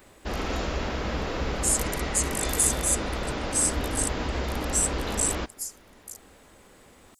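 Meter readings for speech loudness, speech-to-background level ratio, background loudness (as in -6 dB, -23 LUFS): -26.5 LUFS, 4.0 dB, -30.5 LUFS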